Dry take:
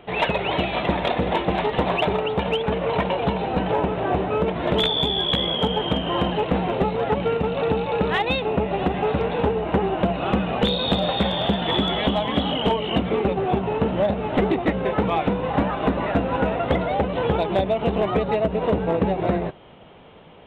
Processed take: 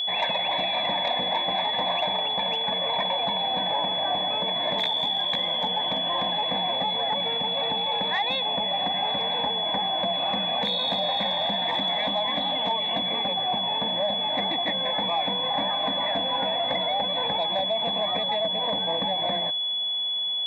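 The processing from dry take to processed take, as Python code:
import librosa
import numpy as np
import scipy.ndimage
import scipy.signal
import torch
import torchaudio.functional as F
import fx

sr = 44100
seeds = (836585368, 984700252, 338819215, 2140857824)

y = scipy.signal.sosfilt(scipy.signal.butter(2, 320.0, 'highpass', fs=sr, output='sos'), x)
y = fx.fixed_phaser(y, sr, hz=2000.0, stages=8)
y = 10.0 ** (-13.0 / 20.0) * np.tanh(y / 10.0 ** (-13.0 / 20.0))
y = y + 10.0 ** (-26.0 / 20.0) * np.sin(2.0 * np.pi * 3400.0 * np.arange(len(y)) / sr)
y = fx.env_flatten(y, sr, amount_pct=50)
y = y * 10.0 ** (-3.0 / 20.0)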